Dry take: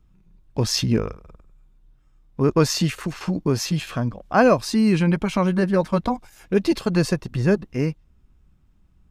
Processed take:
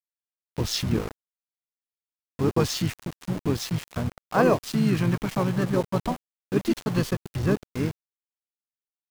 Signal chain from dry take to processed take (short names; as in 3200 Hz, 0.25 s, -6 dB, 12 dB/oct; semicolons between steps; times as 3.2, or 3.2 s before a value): harmoniser -7 st -6 dB, -5 st -7 dB; sample gate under -26 dBFS; gain -6 dB